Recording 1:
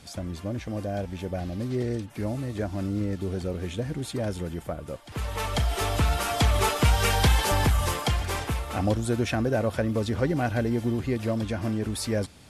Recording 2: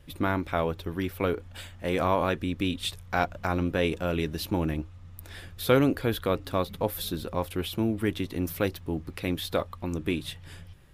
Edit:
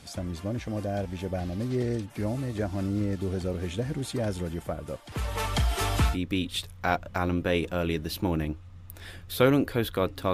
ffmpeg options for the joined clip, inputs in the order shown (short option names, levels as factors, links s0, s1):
-filter_complex "[0:a]asettb=1/sr,asplit=3[s0][s1][s2];[s0]atrim=end=5.464[s3];[s1]atrim=start=5.46:end=6.18,asetpts=PTS-STARTPTS,afade=t=in:d=0.004:c=qsin,afade=t=out:st=0.716:d=0.004:c=qsin,equalizer=f=540:w=3.5:g=-8[s4];[s2]atrim=start=6.176[s5];[s3][s4]acrossfade=d=0.004:c1=hsin:c2=qsin[s6];[s6][s5]acrossfade=d=0.004:c1=qsin:c2=hsin,apad=whole_dur=10.33,atrim=end=10.33,atrim=end=6.18,asetpts=PTS-STARTPTS[s7];[1:a]atrim=start=2.35:end=6.62,asetpts=PTS-STARTPTS[s8];[s7][s8]acrossfade=d=0.12:c1=tri:c2=tri"